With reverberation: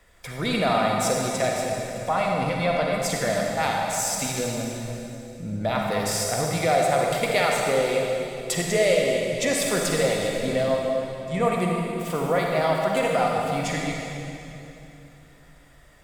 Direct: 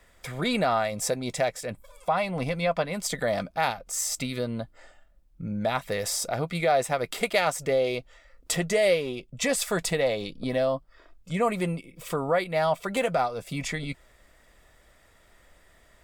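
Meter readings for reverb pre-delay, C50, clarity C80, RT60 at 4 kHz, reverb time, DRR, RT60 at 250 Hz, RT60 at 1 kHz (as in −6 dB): 40 ms, −0.5 dB, 0.5 dB, 2.7 s, 3.0 s, −1.0 dB, 3.7 s, 2.8 s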